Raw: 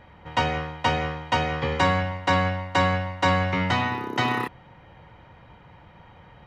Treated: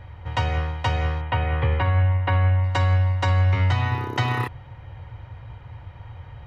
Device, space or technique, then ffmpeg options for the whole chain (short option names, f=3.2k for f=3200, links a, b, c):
car stereo with a boomy subwoofer: -filter_complex "[0:a]asettb=1/sr,asplit=3[a][b][c];[a]atrim=end=1.214[d];[b]atrim=start=1.21:end=2.64,asetpts=PTS-STARTPTS,afade=t=in:d=0.004:c=qsin,afade=t=out:st=1.426:d=0.004:c=qsin,lowpass=f=3k:w=0.5412,lowpass=f=3k:w=1.3066[e];[c]atrim=start=2.636[f];[d][e]acrossfade=d=0.004:c1=hsin:c2=qsin[g];[g][f]acrossfade=d=0.004:c1=qsin:c2=hsin,lowshelf=f=140:t=q:w=3:g=9,alimiter=limit=-14dB:level=0:latency=1:release=280,volume=1.5dB"